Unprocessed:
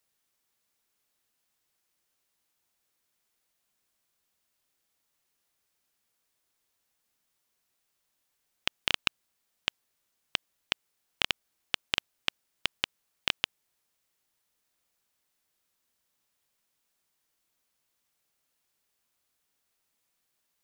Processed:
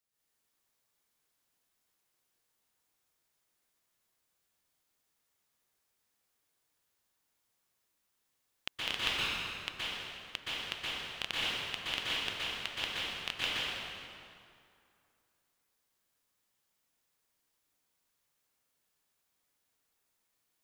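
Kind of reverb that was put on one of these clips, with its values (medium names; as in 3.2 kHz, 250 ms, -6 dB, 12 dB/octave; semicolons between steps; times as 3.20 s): plate-style reverb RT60 2.5 s, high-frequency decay 0.7×, pre-delay 110 ms, DRR -9 dB; trim -10 dB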